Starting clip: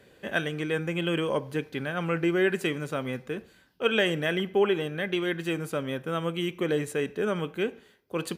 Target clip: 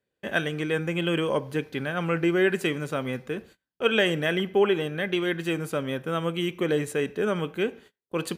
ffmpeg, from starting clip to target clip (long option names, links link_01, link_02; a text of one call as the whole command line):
ffmpeg -i in.wav -af "agate=range=-28dB:threshold=-50dB:ratio=16:detection=peak,volume=2dB" out.wav